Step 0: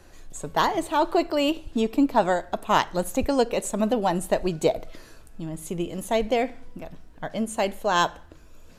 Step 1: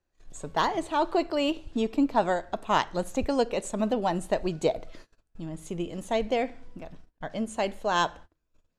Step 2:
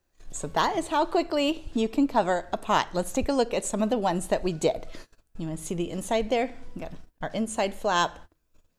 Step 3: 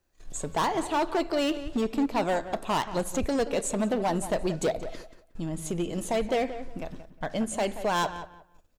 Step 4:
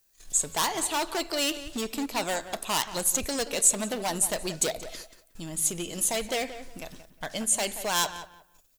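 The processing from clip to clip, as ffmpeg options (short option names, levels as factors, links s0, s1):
-af "agate=range=0.0501:threshold=0.00891:ratio=16:detection=peak,lowpass=7800,volume=0.668"
-filter_complex "[0:a]highshelf=f=7800:g=8,asplit=2[s0][s1];[s1]acompressor=threshold=0.02:ratio=6,volume=1.06[s2];[s0][s2]amix=inputs=2:normalize=0,volume=0.891"
-filter_complex "[0:a]asoftclip=type=hard:threshold=0.0841,asplit=2[s0][s1];[s1]adelay=179,lowpass=f=2600:p=1,volume=0.251,asplit=2[s2][s3];[s3]adelay=179,lowpass=f=2600:p=1,volume=0.23,asplit=2[s4][s5];[s5]adelay=179,lowpass=f=2600:p=1,volume=0.23[s6];[s0][s2][s4][s6]amix=inputs=4:normalize=0"
-af "crystalizer=i=8.5:c=0,volume=0.473"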